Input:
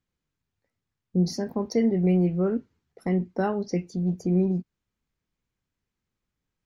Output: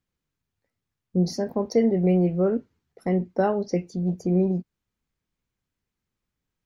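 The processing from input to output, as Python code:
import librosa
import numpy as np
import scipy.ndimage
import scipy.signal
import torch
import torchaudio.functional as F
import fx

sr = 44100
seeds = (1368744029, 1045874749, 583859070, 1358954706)

y = fx.dynamic_eq(x, sr, hz=580.0, q=1.5, threshold_db=-40.0, ratio=4.0, max_db=7)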